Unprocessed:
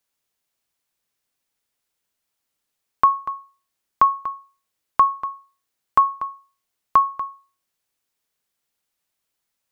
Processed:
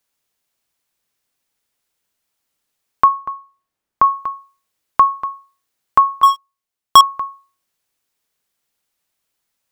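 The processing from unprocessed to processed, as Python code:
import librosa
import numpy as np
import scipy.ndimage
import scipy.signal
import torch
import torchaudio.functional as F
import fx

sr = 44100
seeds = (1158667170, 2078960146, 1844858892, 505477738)

y = fx.high_shelf(x, sr, hz=2200.0, db=-10.0, at=(3.08, 4.04))
y = fx.leveller(y, sr, passes=5, at=(6.23, 7.01))
y = y * librosa.db_to_amplitude(4.0)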